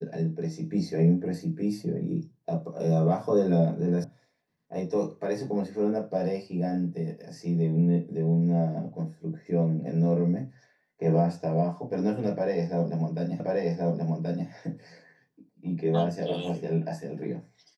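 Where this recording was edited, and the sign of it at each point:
4.04 sound cut off
13.4 repeat of the last 1.08 s

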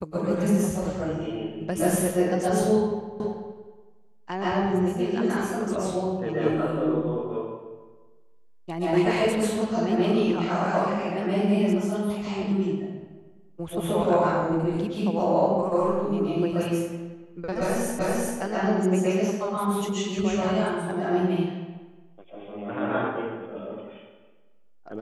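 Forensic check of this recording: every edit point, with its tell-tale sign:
3.2 repeat of the last 0.33 s
17.99 repeat of the last 0.39 s

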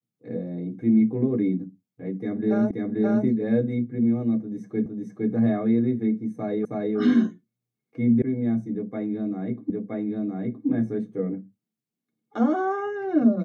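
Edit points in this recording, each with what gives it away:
2.71 repeat of the last 0.53 s
4.86 repeat of the last 0.46 s
6.65 repeat of the last 0.32 s
8.22 sound cut off
9.7 repeat of the last 0.97 s

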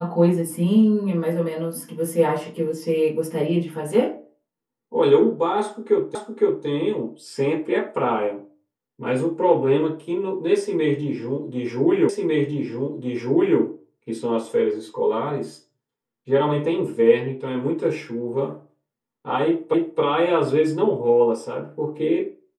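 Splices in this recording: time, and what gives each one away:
6.15 repeat of the last 0.51 s
12.09 repeat of the last 1.5 s
19.74 repeat of the last 0.27 s

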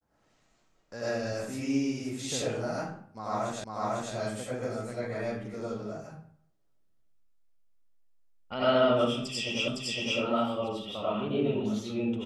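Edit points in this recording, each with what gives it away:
3.64 repeat of the last 0.5 s
9.68 repeat of the last 0.51 s

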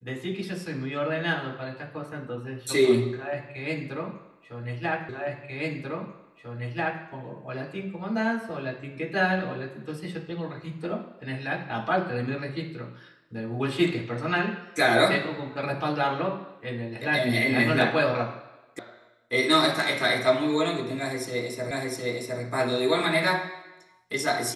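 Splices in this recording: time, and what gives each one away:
5.09 repeat of the last 1.94 s
18.79 sound cut off
21.71 repeat of the last 0.71 s

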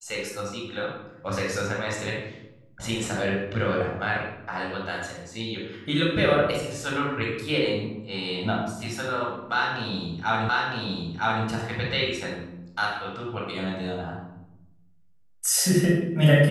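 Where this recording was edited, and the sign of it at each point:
10.49 repeat of the last 0.96 s

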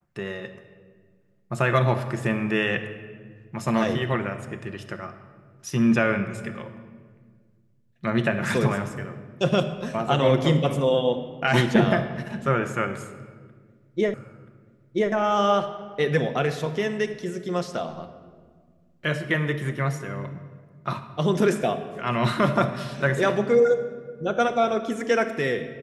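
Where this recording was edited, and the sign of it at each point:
14.14 repeat of the last 0.98 s

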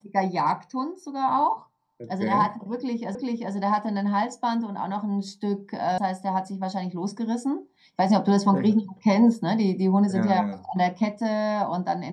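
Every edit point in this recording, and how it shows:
3.15 repeat of the last 0.39 s
5.98 sound cut off

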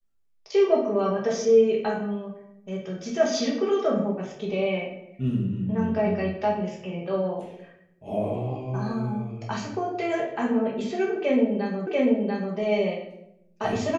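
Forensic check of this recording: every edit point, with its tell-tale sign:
11.87 repeat of the last 0.69 s

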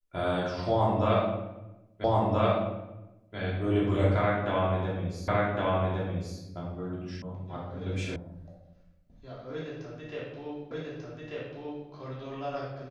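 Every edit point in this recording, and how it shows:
2.04 repeat of the last 1.33 s
5.28 repeat of the last 1.11 s
7.22 sound cut off
8.16 sound cut off
10.71 repeat of the last 1.19 s

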